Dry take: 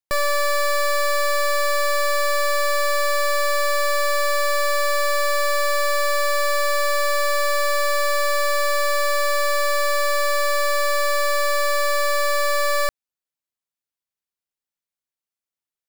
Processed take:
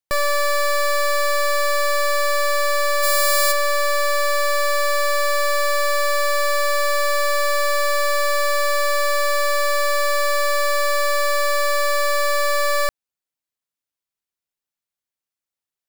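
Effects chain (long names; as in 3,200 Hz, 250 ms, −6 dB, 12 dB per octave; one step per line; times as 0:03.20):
0:03.02–0:03.51: high-shelf EQ 6,200 Hz → 3,800 Hz +11 dB
level +1 dB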